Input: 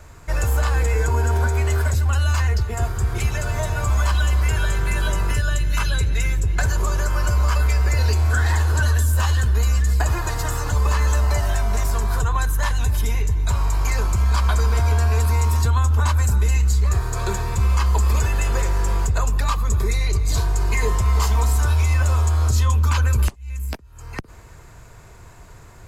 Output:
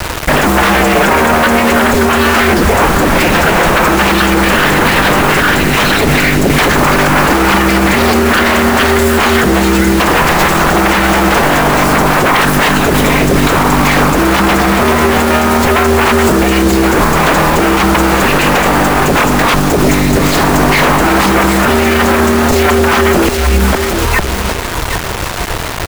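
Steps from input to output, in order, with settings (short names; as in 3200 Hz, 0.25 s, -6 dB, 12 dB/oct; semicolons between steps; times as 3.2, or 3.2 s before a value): in parallel at +1 dB: vocal rider within 3 dB 0.5 s; on the sum: spectral gain 19.54–20.17, 210–4900 Hz -9 dB; wavefolder -18 dBFS; tone controls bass -6 dB, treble -15 dB; feedback echo 0.765 s, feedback 26%, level -10 dB; dynamic EQ 110 Hz, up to -4 dB, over -45 dBFS, Q 2.5; requantised 6-bit, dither none; maximiser +21 dB; gain -1 dB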